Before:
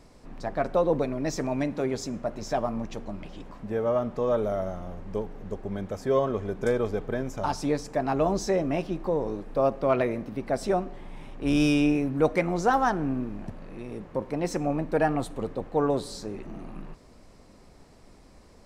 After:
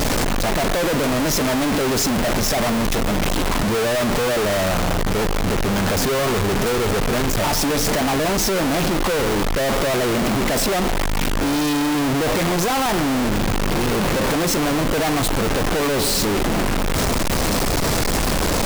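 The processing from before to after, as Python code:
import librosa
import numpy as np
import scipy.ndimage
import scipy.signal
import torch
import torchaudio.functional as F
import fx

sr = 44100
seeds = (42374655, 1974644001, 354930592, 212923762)

y = np.sign(x) * np.sqrt(np.mean(np.square(x)))
y = F.gain(torch.from_numpy(y), 9.0).numpy()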